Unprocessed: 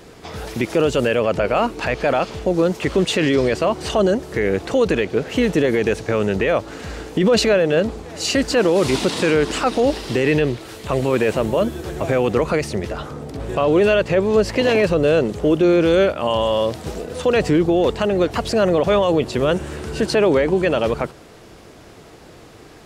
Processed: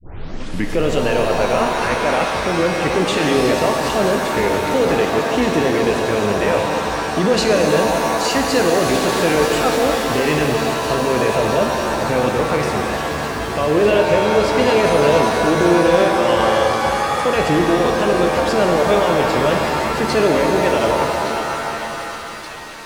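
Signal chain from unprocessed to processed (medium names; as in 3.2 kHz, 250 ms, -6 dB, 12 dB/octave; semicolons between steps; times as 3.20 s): tape start-up on the opening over 0.72 s; feedback echo behind a high-pass 1171 ms, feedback 76%, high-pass 1.8 kHz, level -11 dB; pitch-shifted reverb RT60 3.3 s, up +7 st, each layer -2 dB, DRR 2 dB; trim -2 dB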